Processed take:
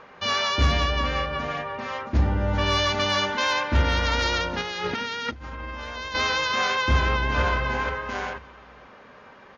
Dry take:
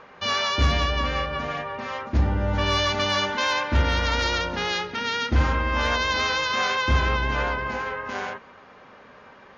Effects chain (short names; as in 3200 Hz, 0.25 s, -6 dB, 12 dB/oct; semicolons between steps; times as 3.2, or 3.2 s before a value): 4.61–6.15 negative-ratio compressor -33 dBFS, ratio -1; 6.85–7.4 echo throw 0.49 s, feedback 25%, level -6 dB